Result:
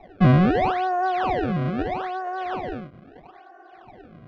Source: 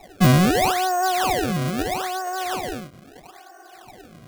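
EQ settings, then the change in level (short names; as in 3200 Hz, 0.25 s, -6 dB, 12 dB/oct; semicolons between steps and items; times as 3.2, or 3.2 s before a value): air absorption 310 m; high shelf 4700 Hz -11.5 dB; 0.0 dB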